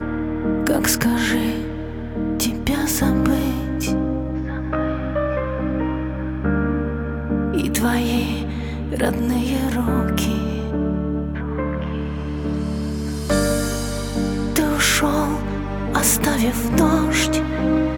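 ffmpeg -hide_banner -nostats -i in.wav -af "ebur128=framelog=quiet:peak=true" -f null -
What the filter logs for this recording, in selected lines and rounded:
Integrated loudness:
  I:         -21.1 LUFS
  Threshold: -31.1 LUFS
Loudness range:
  LRA:         4.6 LU
  Threshold: -41.4 LUFS
  LRA low:   -23.4 LUFS
  LRA high:  -18.8 LUFS
True peak:
  Peak:       -2.3 dBFS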